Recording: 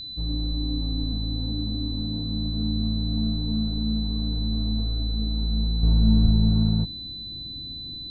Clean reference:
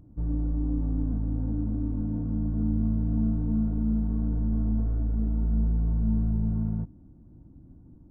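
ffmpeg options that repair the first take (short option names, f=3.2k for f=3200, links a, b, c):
-filter_complex "[0:a]bandreject=f=4k:w=30,asplit=3[a][b][c];[a]afade=t=out:st=6.23:d=0.02[d];[b]highpass=f=140:w=0.5412,highpass=f=140:w=1.3066,afade=t=in:st=6.23:d=0.02,afade=t=out:st=6.35:d=0.02[e];[c]afade=t=in:st=6.35:d=0.02[f];[d][e][f]amix=inputs=3:normalize=0,agate=range=-21dB:threshold=-28dB,asetnsamples=n=441:p=0,asendcmd='5.83 volume volume -7dB',volume=0dB"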